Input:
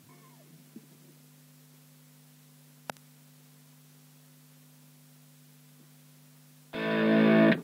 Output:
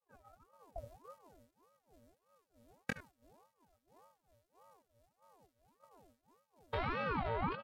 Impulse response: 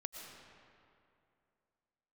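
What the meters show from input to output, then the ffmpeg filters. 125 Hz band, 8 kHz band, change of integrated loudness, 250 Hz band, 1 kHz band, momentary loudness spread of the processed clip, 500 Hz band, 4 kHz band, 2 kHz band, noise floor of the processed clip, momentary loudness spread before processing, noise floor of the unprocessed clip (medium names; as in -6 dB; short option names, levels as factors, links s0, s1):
-9.5 dB, -12.0 dB, -15.5 dB, -20.5 dB, -3.0 dB, 19 LU, -14.0 dB, -11.5 dB, -11.0 dB, -84 dBFS, 15 LU, -57 dBFS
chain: -filter_complex "[0:a]dynaudnorm=f=110:g=11:m=1.58,highpass=120,equalizer=f=840:w=1.8:g=3.5,flanger=delay=20:depth=3.7:speed=1.5,asplit=2[s0][s1];[s1]aecho=0:1:65|78:0.133|0.15[s2];[s0][s2]amix=inputs=2:normalize=0,afftdn=nr=13:nf=-53,afftfilt=real='hypot(re,im)*cos(PI*b)':imag='0':win_size=512:overlap=0.75,acompressor=threshold=0.00708:ratio=8,bandreject=f=2600:w=10,agate=range=0.0224:threshold=0.00112:ratio=3:detection=peak,highshelf=f=2600:g=-4.5,aeval=exprs='val(0)*sin(2*PI*570*n/s+570*0.6/1.7*sin(2*PI*1.7*n/s))':c=same,volume=4.22"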